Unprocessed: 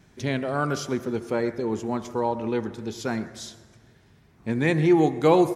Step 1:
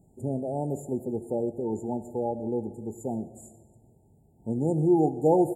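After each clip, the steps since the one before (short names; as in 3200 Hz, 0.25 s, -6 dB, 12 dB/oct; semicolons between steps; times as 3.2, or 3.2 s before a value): FFT band-reject 910–6900 Hz; gain -3 dB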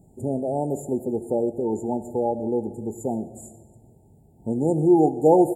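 dynamic EQ 120 Hz, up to -6 dB, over -39 dBFS, Q 0.91; gain +6 dB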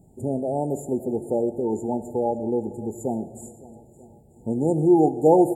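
swung echo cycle 0.937 s, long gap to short 1.5:1, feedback 33%, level -20.5 dB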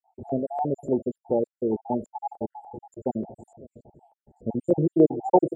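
random spectral dropouts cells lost 61%; LFO low-pass saw up 3.4 Hz 580–4700 Hz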